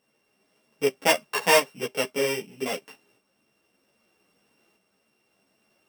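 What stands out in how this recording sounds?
a buzz of ramps at a fixed pitch in blocks of 16 samples; tremolo saw up 0.63 Hz, depth 45%; a shimmering, thickened sound

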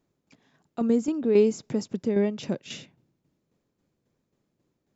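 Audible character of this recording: tremolo saw down 3.7 Hz, depth 55%

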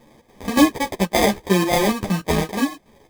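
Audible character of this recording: chopped level 3.5 Hz, depth 60%, duty 70%; aliases and images of a low sample rate 1400 Hz, jitter 0%; a shimmering, thickened sound

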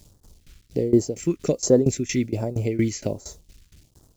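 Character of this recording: a quantiser's noise floor 10-bit, dither none; tremolo saw down 4.3 Hz, depth 90%; phasing stages 2, 1.3 Hz, lowest notch 670–2300 Hz

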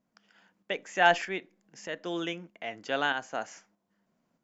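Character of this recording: tremolo saw up 1.6 Hz, depth 50%

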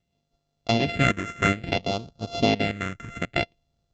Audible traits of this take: a buzz of ramps at a fixed pitch in blocks of 64 samples; phasing stages 4, 0.58 Hz, lowest notch 750–1900 Hz; SBC

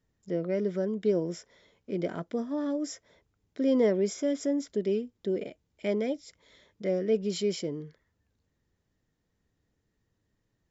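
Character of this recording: noise floor -78 dBFS; spectral tilt -6.5 dB/oct

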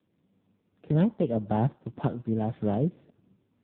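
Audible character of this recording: a buzz of ramps at a fixed pitch in blocks of 8 samples; tremolo saw up 1.8 Hz, depth 45%; AMR-NB

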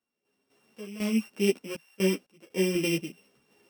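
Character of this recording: a buzz of ramps at a fixed pitch in blocks of 16 samples; random-step tremolo 4 Hz, depth 95%; a shimmering, thickened sound

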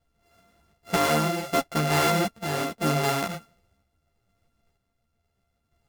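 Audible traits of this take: a buzz of ramps at a fixed pitch in blocks of 64 samples; random-step tremolo 2.1 Hz; a shimmering, thickened sound

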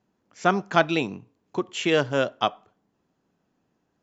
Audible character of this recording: noise floor -74 dBFS; spectral tilt -3.0 dB/oct

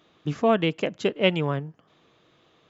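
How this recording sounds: noise floor -63 dBFS; spectral tilt -4.5 dB/oct

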